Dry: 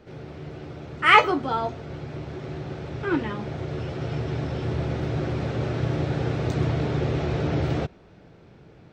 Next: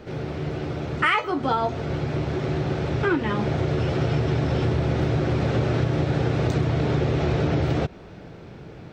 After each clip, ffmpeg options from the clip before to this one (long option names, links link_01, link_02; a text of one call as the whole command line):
ffmpeg -i in.wav -af "acompressor=threshold=-27dB:ratio=20,volume=9dB" out.wav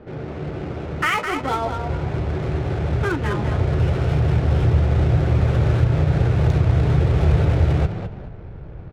ffmpeg -i in.wav -filter_complex "[0:a]asplit=5[link_01][link_02][link_03][link_04][link_05];[link_02]adelay=208,afreqshift=32,volume=-7dB[link_06];[link_03]adelay=416,afreqshift=64,volume=-16.6dB[link_07];[link_04]adelay=624,afreqshift=96,volume=-26.3dB[link_08];[link_05]adelay=832,afreqshift=128,volume=-35.9dB[link_09];[link_01][link_06][link_07][link_08][link_09]amix=inputs=5:normalize=0,adynamicsmooth=sensitivity=7:basefreq=1300,asubboost=boost=9:cutoff=75" out.wav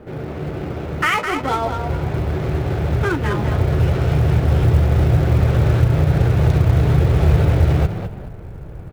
ffmpeg -i in.wav -af "acrusher=bits=9:mode=log:mix=0:aa=0.000001,volume=2.5dB" out.wav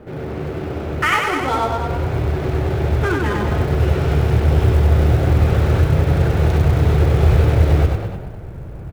ffmpeg -i in.wav -af "aecho=1:1:96:0.668" out.wav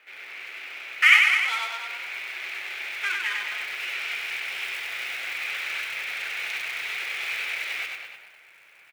ffmpeg -i in.wav -af "highpass=frequency=2300:width_type=q:width=3.9,volume=-2.5dB" out.wav